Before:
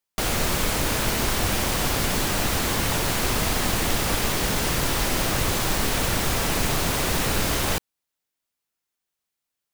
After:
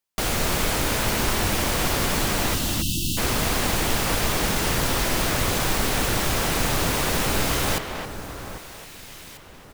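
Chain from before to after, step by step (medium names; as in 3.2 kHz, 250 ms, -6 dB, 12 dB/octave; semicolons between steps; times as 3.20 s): on a send: echo whose repeats swap between lows and highs 795 ms, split 1.7 kHz, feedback 52%, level -10.5 dB; on the sum: spectral selection erased 2.55–3.17 s, 350–2600 Hz; speakerphone echo 270 ms, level -6 dB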